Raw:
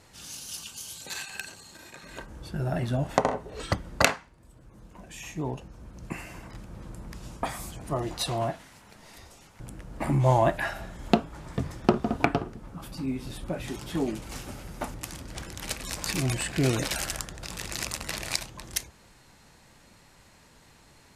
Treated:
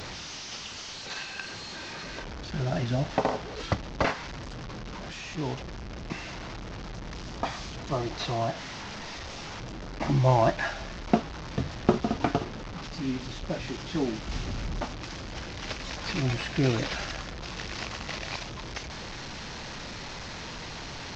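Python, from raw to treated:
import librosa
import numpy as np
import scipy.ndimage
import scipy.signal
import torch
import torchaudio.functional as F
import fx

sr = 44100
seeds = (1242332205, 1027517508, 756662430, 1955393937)

y = fx.delta_mod(x, sr, bps=32000, step_db=-32.5)
y = fx.low_shelf(y, sr, hz=180.0, db=10.0, at=(14.27, 14.81))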